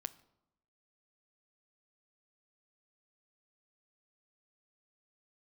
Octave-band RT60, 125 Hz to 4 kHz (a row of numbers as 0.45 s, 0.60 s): 0.95 s, 1.0 s, 0.90 s, 0.85 s, 0.60 s, 0.55 s